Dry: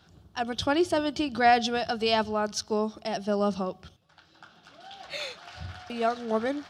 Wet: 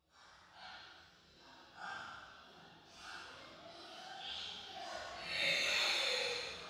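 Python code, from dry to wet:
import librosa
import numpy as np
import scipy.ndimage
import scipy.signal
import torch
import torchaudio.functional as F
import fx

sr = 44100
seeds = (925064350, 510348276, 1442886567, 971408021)

y = fx.hpss(x, sr, part='harmonic', gain_db=-16)
y = fx.paulstretch(y, sr, seeds[0], factor=5.0, window_s=0.05, from_s=4.06)
y = fx.rev_gated(y, sr, seeds[1], gate_ms=430, shape='falling', drr_db=-5.5)
y = F.gain(torch.from_numpy(y), -3.0).numpy()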